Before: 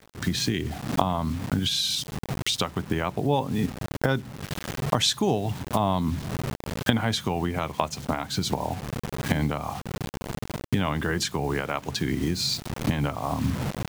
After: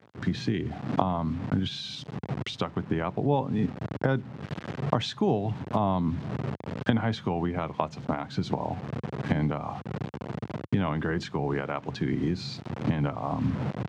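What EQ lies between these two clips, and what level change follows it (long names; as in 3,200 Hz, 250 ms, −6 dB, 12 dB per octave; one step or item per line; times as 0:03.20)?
high-pass filter 92 Hz 24 dB per octave
head-to-tape spacing loss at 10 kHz 28 dB
0.0 dB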